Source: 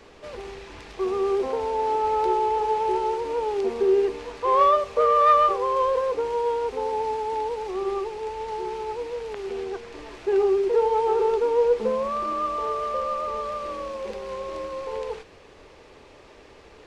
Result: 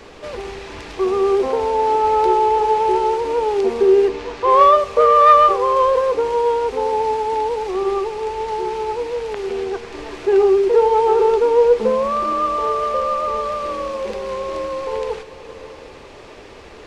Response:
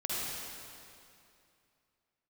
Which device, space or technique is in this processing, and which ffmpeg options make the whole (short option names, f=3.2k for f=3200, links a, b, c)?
ducked reverb: -filter_complex "[0:a]asplit=3[a][b][c];[1:a]atrim=start_sample=2205[d];[b][d]afir=irnorm=-1:irlink=0[e];[c]apad=whole_len=743660[f];[e][f]sidechaincompress=threshold=-40dB:ratio=8:attack=16:release=432,volume=-11dB[g];[a][g]amix=inputs=2:normalize=0,asettb=1/sr,asplit=3[h][i][j];[h]atrim=end=4.084[k];[i]atrim=start=4.08:end=4.5,asetpts=PTS-STARTPTS,afade=t=in:d=0.004:c=qsin,afade=t=out:st=0.416:d=0.004:c=qsin,lowpass=6.7k[l];[j]atrim=start=4.496[m];[k][l]acrossfade=d=0.004:c1=hsin:c2=qsin[n];[n][m]acrossfade=d=0.004:c1=qsin:c2=hsin,volume=7dB"